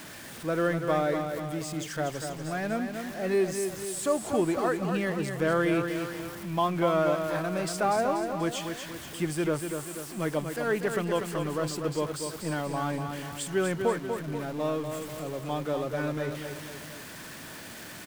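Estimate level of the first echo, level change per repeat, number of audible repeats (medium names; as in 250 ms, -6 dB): -6.5 dB, -6.0 dB, 3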